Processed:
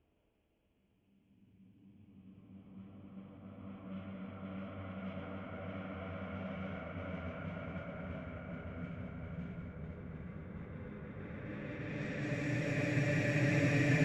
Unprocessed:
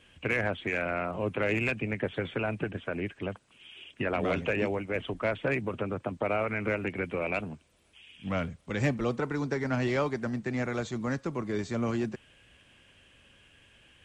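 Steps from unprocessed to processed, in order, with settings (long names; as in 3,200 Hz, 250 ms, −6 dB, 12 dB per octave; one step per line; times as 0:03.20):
output level in coarse steps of 24 dB
extreme stretch with random phases 17×, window 0.50 s, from 0:07.98
low-pass that shuts in the quiet parts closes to 660 Hz, open at −38.5 dBFS
level +5.5 dB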